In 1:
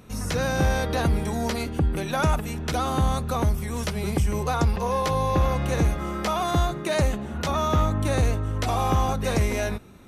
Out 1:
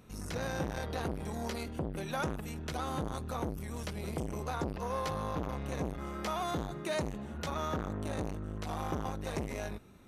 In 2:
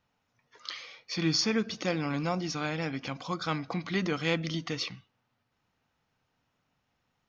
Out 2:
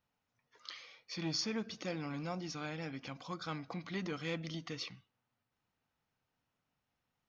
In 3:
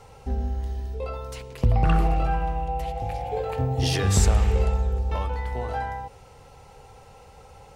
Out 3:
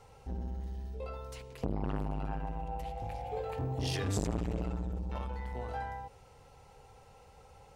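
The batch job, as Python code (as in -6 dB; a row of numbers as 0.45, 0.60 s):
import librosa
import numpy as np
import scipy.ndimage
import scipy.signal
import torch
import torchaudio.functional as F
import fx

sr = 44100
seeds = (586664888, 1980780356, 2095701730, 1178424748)

y = fx.transformer_sat(x, sr, knee_hz=430.0)
y = y * 10.0 ** (-8.5 / 20.0)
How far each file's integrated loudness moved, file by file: -12.5, -9.5, -12.0 LU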